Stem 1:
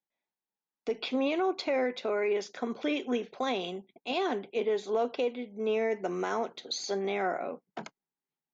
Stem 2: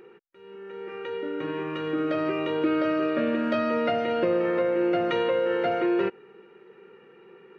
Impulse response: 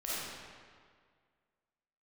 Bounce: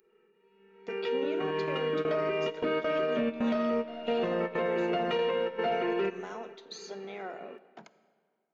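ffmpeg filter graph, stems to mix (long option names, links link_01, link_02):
-filter_complex "[0:a]volume=-10.5dB,asplit=3[link_01][link_02][link_03];[link_02]volume=-19dB[link_04];[1:a]aecho=1:1:4.6:0.97,asoftclip=type=tanh:threshold=-13dB,volume=-2dB,asplit=2[link_05][link_06];[link_06]volume=-19dB[link_07];[link_03]apad=whole_len=334508[link_08];[link_05][link_08]sidechaingate=range=-33dB:threshold=-50dB:ratio=16:detection=peak[link_09];[2:a]atrim=start_sample=2205[link_10];[link_04][link_07]amix=inputs=2:normalize=0[link_11];[link_11][link_10]afir=irnorm=-1:irlink=0[link_12];[link_01][link_09][link_12]amix=inputs=3:normalize=0,alimiter=limit=-21.5dB:level=0:latency=1:release=122"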